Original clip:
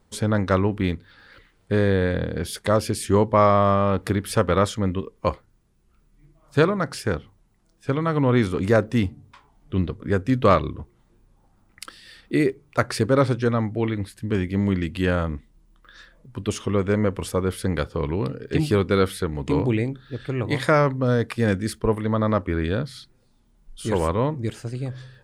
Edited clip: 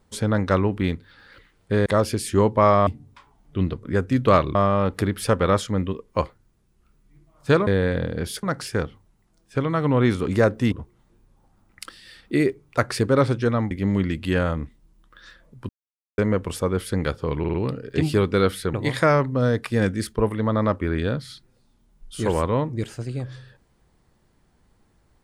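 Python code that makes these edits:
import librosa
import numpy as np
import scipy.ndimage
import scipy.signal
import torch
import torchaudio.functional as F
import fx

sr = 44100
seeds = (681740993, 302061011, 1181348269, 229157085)

y = fx.edit(x, sr, fx.move(start_s=1.86, length_s=0.76, to_s=6.75),
    fx.move(start_s=9.04, length_s=1.68, to_s=3.63),
    fx.cut(start_s=13.71, length_s=0.72),
    fx.silence(start_s=16.41, length_s=0.49),
    fx.stutter(start_s=18.11, slice_s=0.05, count=4),
    fx.cut(start_s=19.31, length_s=1.09), tone=tone)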